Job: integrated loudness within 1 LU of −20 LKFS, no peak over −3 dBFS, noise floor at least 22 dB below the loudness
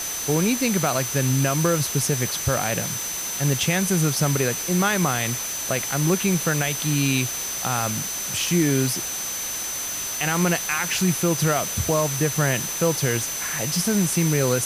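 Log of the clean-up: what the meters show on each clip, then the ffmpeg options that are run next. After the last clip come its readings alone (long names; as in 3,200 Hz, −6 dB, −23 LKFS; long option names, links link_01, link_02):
interfering tone 6,100 Hz; level of the tone −29 dBFS; background noise floor −29 dBFS; target noise floor −44 dBFS; integrated loudness −22.0 LKFS; sample peak −9.0 dBFS; target loudness −20.0 LKFS
→ -af "bandreject=frequency=6100:width=30"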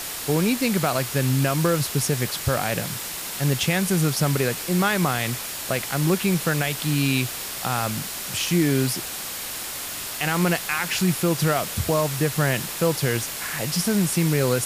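interfering tone none found; background noise floor −32 dBFS; target noise floor −45 dBFS
→ -af "afftdn=noise_reduction=13:noise_floor=-32"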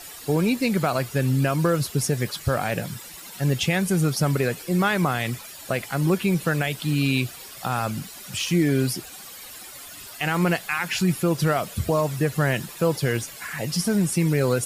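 background noise floor −41 dBFS; target noise floor −46 dBFS
→ -af "afftdn=noise_reduction=6:noise_floor=-41"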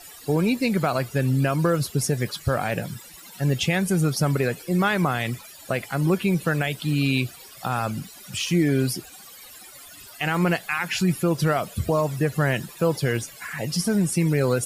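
background noise floor −45 dBFS; target noise floor −46 dBFS
→ -af "afftdn=noise_reduction=6:noise_floor=-45"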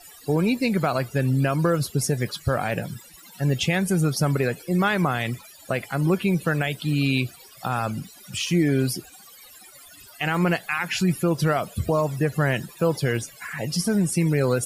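background noise floor −48 dBFS; integrated loudness −24.0 LKFS; sample peak −11.0 dBFS; target loudness −20.0 LKFS
→ -af "volume=4dB"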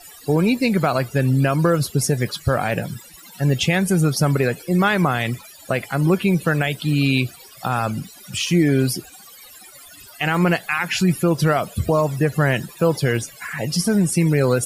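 integrated loudness −20.0 LKFS; sample peak −7.0 dBFS; background noise floor −44 dBFS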